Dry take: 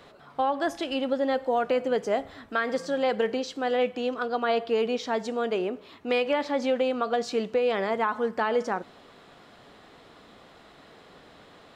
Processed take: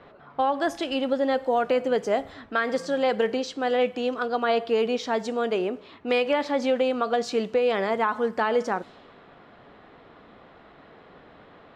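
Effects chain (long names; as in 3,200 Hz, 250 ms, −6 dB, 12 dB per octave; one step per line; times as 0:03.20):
low-pass that shuts in the quiet parts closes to 2,000 Hz, open at −25.5 dBFS
level +2 dB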